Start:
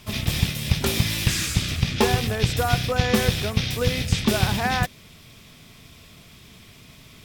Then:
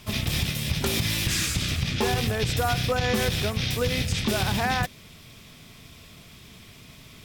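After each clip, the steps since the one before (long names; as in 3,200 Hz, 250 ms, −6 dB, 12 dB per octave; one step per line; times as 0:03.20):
brickwall limiter −14.5 dBFS, peak gain reduction 9 dB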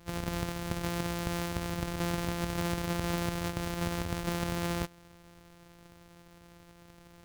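samples sorted by size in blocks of 256 samples
level −8 dB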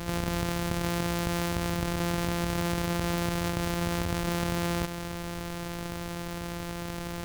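envelope flattener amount 70%
level +1.5 dB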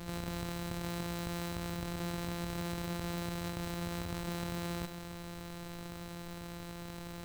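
tuned comb filter 180 Hz, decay 0.78 s, harmonics all, mix 80%
level +3 dB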